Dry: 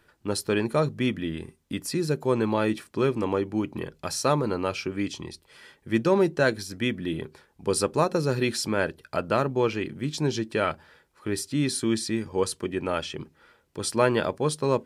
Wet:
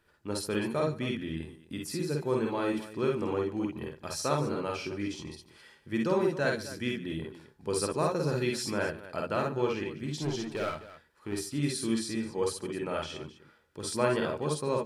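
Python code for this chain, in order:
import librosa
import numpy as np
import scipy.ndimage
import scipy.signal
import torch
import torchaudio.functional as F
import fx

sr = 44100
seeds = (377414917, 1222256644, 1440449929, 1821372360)

y = fx.clip_hard(x, sr, threshold_db=-21.5, at=(10.06, 11.38))
y = fx.echo_multitap(y, sr, ms=(49, 62, 144, 260), db=(-3.0, -5.0, -17.0, -14.5))
y = y * 10.0 ** (-8.0 / 20.0)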